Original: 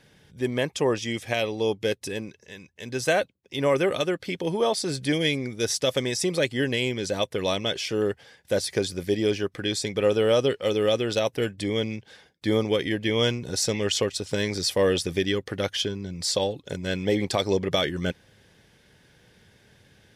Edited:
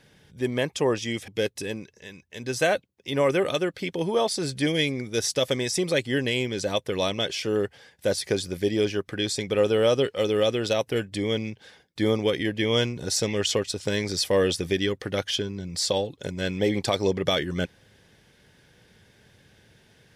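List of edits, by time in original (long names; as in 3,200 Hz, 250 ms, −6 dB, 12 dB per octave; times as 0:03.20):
0:01.28–0:01.74: remove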